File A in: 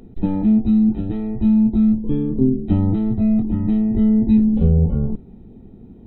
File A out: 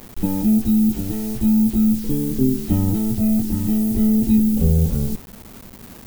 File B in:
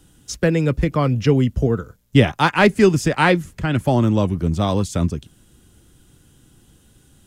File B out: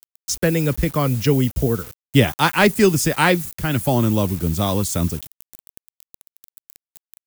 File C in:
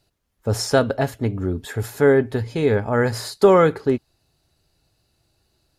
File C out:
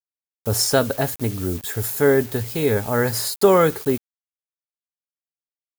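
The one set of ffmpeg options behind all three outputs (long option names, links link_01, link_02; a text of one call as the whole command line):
ffmpeg -i in.wav -af "acrusher=bits=6:mix=0:aa=0.000001,aemphasis=mode=production:type=50fm,volume=-1dB" out.wav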